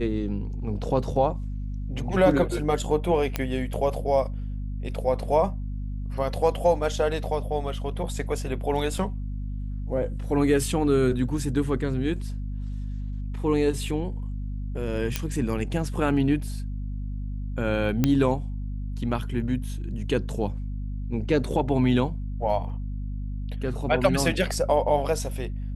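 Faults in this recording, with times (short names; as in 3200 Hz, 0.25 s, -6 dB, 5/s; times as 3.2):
hum 50 Hz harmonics 5 -31 dBFS
3.36 pop -10 dBFS
8.98 gap 3 ms
15.16 pop -9 dBFS
18.04 pop -8 dBFS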